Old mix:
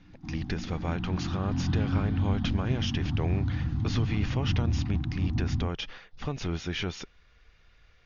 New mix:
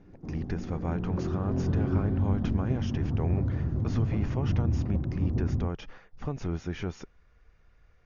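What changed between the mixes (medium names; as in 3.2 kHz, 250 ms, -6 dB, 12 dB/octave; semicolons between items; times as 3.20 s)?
background: remove elliptic band-stop 320–740 Hz; master: add peaking EQ 3.6 kHz -14.5 dB 1.7 oct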